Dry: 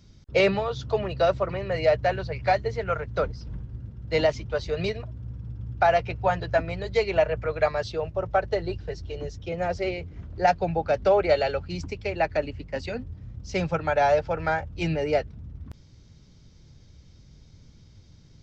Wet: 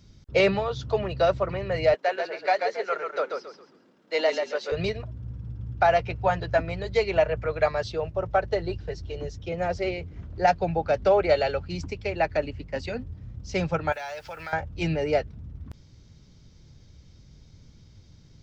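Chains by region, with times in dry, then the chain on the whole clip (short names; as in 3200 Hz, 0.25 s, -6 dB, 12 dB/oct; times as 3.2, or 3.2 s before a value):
1.94–4.72 Bessel high-pass 440 Hz, order 8 + frequency-shifting echo 0.136 s, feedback 30%, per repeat -32 Hz, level -5 dB
13.92–14.53 tilt shelf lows -10 dB, about 940 Hz + compressor 4:1, threshold -35 dBFS + requantised 10-bit, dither none
whole clip: dry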